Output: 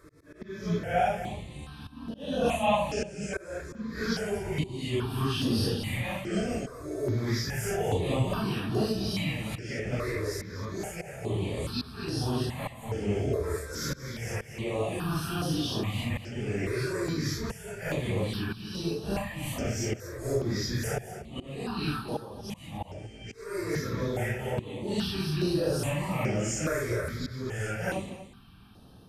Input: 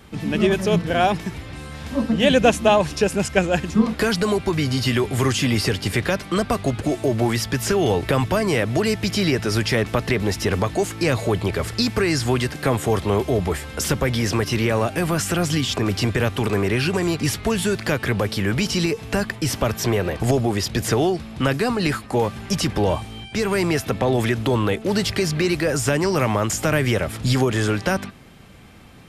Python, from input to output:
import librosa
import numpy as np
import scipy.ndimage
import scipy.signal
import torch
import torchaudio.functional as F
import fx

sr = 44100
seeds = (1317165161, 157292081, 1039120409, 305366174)

y = fx.phase_scramble(x, sr, seeds[0], window_ms=200)
y = fx.auto_swell(y, sr, attack_ms=417.0)
y = y + 10.0 ** (-12.5 / 20.0) * np.pad(y, (int(240 * sr / 1000.0), 0))[:len(y)]
y = fx.phaser_held(y, sr, hz=2.4, low_hz=790.0, high_hz=7300.0)
y = F.gain(torch.from_numpy(y), -6.5).numpy()